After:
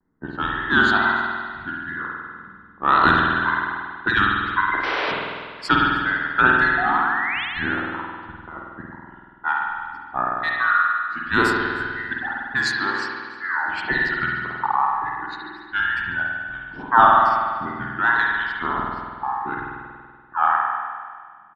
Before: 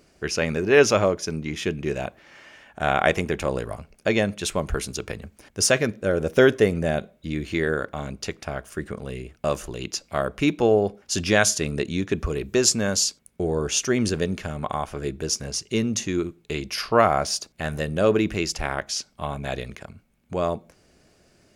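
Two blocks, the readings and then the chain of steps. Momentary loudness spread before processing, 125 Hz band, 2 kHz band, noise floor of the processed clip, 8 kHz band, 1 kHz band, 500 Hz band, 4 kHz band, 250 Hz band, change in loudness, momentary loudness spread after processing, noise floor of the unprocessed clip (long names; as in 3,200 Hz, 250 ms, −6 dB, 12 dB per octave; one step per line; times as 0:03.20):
13 LU, −6.5 dB, +10.0 dB, −46 dBFS, −22.0 dB, +10.5 dB, −10.0 dB, −2.0 dB, −4.0 dB, +3.0 dB, 16 LU, −61 dBFS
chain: frequency inversion band by band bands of 2,000 Hz
low-pass that shuts in the quiet parts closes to 340 Hz, open at −14.5 dBFS
reverb reduction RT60 2 s
drawn EQ curve 100 Hz 0 dB, 350 Hz +5 dB, 520 Hz −12 dB, 970 Hz +12 dB, 1,700 Hz −1 dB, 6,000 Hz +13 dB
speech leveller within 4 dB 2 s
sound drawn into the spectrogram rise, 0:06.78–0:07.45, 720–3,500 Hz −23 dBFS
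tape wow and flutter 150 cents
sound drawn into the spectrogram noise, 0:04.83–0:05.12, 300–6,000 Hz −20 dBFS
high-frequency loss of the air 430 metres
on a send: single-tap delay 310 ms −23 dB
on the sum: spring reverb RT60 1.8 s, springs 48 ms, chirp 25 ms, DRR −2.5 dB
level −1.5 dB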